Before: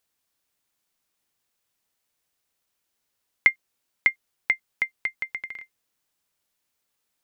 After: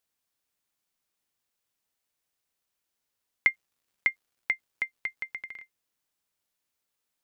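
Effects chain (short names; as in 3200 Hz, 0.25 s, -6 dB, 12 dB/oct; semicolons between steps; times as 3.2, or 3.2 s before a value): 3.47–5.53 crackle 160/s -59 dBFS; gain -5 dB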